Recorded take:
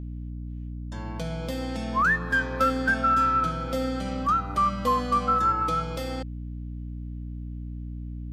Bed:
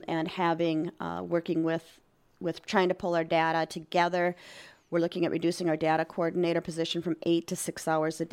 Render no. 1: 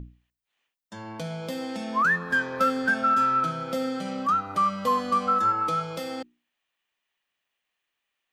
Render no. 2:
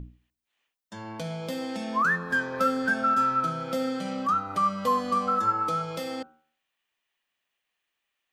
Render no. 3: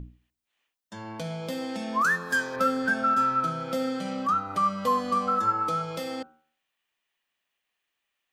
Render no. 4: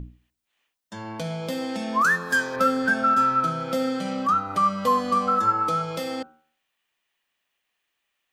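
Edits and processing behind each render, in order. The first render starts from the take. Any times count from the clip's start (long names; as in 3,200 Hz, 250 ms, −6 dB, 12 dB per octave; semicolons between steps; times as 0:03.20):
mains-hum notches 60/120/180/240/300/360 Hz
hum removal 77.8 Hz, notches 20; dynamic equaliser 2,600 Hz, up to −4 dB, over −36 dBFS, Q 1
0:02.01–0:02.56: bass and treble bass −6 dB, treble +12 dB
level +3.5 dB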